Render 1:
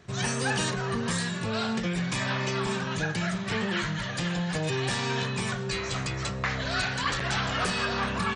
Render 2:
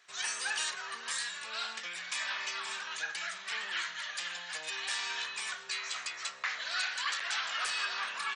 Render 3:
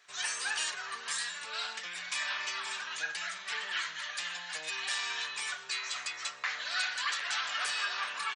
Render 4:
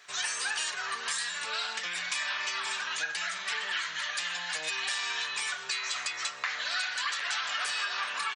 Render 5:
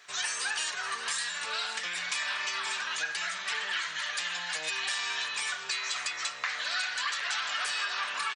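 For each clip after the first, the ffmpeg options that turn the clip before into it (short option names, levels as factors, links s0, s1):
-af "highpass=1400,volume=0.75"
-af "aecho=1:1:6.8:0.43"
-af "acompressor=threshold=0.0112:ratio=3,volume=2.51"
-af "aecho=1:1:585|1170|1755|2340:0.168|0.0672|0.0269|0.0107"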